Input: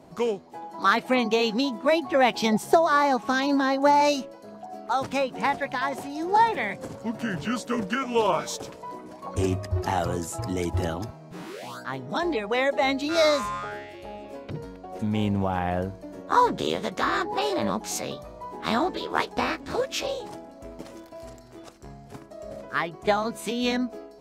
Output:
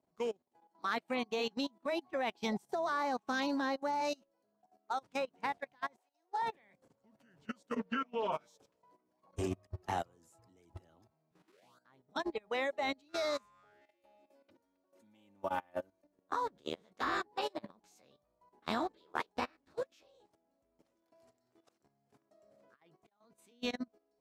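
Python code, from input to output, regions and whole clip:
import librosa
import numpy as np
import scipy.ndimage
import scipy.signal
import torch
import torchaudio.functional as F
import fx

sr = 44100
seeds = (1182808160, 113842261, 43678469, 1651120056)

y = fx.chain(x, sr, fx.highpass(hz=460.0, slope=24),
    fx.upward_expand(threshold_db=-36.0, expansion=1.5), at=(5.97, 6.42))
y = fx.chain(y, sr, fx.lowpass(hz=3400.0, slope=12),
    fx.peak_eq(hz=73.0, db=-12.5, octaves=0.87),
    fx.comb(ms=4.4, depth=0.91), at=(7.76, 8.32))
y = fx.chain(y, sr, fx.highpass(hz=300.0, slope=6),
    fx.high_shelf(hz=9000.0, db=7.5),
    fx.comb(ms=3.4, depth=0.98), at=(13.81, 16.04))
y = fx.chain(y, sr, fx.highpass(hz=120.0, slope=12),
    fx.over_compress(threshold_db=-32.0, ratio=-0.5), at=(21.02, 23.33))
y = fx.low_shelf(y, sr, hz=140.0, db=-4.5)
y = fx.level_steps(y, sr, step_db=13)
y = fx.upward_expand(y, sr, threshold_db=-39.0, expansion=2.5)
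y = F.gain(torch.from_numpy(y), -6.0).numpy()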